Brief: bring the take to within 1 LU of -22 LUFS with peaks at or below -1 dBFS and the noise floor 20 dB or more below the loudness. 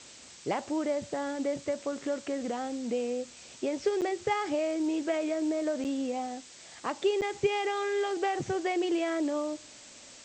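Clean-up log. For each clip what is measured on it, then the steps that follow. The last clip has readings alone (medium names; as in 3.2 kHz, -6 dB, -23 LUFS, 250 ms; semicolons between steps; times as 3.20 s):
dropouts 3; longest dropout 8.3 ms; noise floor -51 dBFS; noise floor target -52 dBFS; loudness -31.5 LUFS; peak level -16.0 dBFS; loudness target -22.0 LUFS
-> interpolate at 4.01/5.84/7.21 s, 8.3 ms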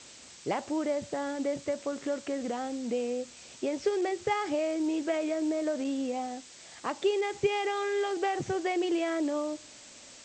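dropouts 0; noise floor -51 dBFS; noise floor target -52 dBFS
-> noise reduction 6 dB, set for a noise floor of -51 dBFS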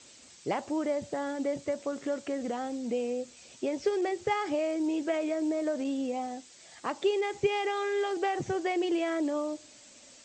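noise floor -54 dBFS; loudness -31.5 LUFS; peak level -16.0 dBFS; loudness target -22.0 LUFS
-> trim +9.5 dB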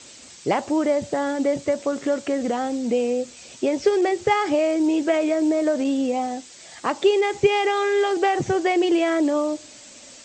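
loudness -22.0 LUFS; peak level -6.5 dBFS; noise floor -45 dBFS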